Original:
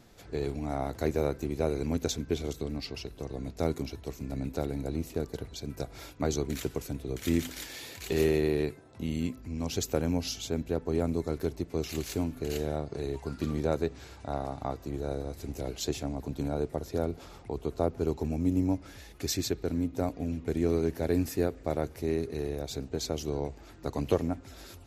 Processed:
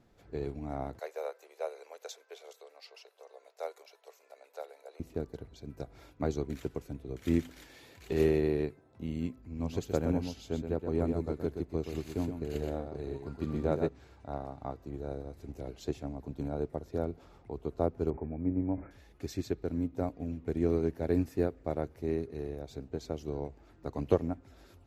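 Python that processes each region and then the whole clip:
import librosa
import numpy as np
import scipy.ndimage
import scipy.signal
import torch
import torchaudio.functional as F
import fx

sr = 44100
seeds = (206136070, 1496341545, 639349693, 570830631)

y = fx.chain(x, sr, fx.steep_highpass(hz=480.0, slope=48),
    fx.high_shelf(hz=4900.0, db=5.5), at=(0.99, 5.0))
y = fx.chain(y, sr, fx.notch(hz=5600.0, q=11.0),
    fx.echo_single(ms=123, db=-5.0), at=(9.38, 13.89))
y = fx.chain(y, sr, fx.cheby_ripple(hz=2400.0, ripple_db=3),
    fx.sustainer(db_per_s=110.0), at=(18.1, 18.91))
y = fx.high_shelf(y, sr, hz=2900.0, db=-11.0)
y = fx.upward_expand(y, sr, threshold_db=-38.0, expansion=1.5)
y = y * 10.0 ** (1.0 / 20.0)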